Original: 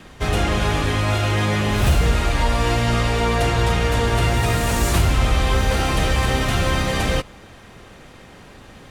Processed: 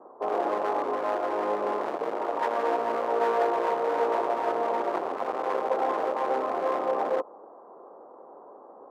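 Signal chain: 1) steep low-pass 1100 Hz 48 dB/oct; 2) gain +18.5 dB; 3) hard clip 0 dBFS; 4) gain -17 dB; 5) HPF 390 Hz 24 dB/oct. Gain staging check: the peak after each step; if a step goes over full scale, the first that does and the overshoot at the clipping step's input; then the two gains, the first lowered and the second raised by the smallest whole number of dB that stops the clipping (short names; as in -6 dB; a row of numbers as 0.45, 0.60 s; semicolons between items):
-8.5, +10.0, 0.0, -17.0, -14.0 dBFS; step 2, 10.0 dB; step 2 +8.5 dB, step 4 -7 dB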